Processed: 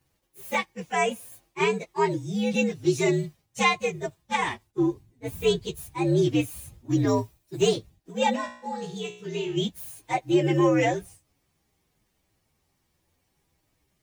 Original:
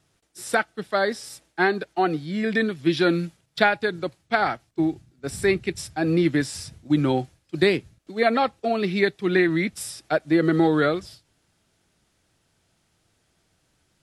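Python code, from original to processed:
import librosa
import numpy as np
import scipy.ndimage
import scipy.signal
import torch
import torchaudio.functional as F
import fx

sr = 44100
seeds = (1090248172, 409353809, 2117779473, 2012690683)

y = fx.partial_stretch(x, sr, pct=121)
y = fx.high_shelf(y, sr, hz=9400.0, db=10.5, at=(7.07, 7.61))
y = fx.comb_fb(y, sr, f0_hz=60.0, decay_s=0.55, harmonics='all', damping=0.0, mix_pct=80, at=(8.35, 9.56), fade=0.02)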